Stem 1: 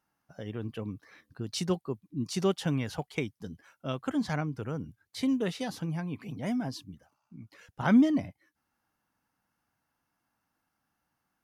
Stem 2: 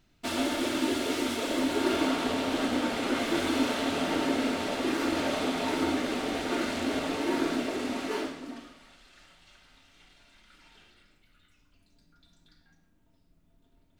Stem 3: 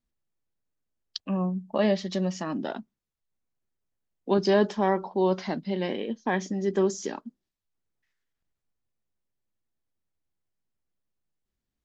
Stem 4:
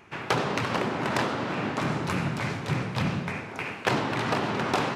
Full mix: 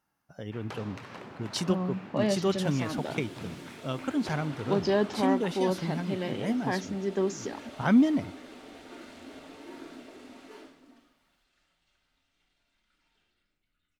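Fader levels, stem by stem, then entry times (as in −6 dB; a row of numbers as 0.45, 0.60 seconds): +0.5, −16.5, −4.0, −17.0 decibels; 0.00, 2.40, 0.40, 0.40 seconds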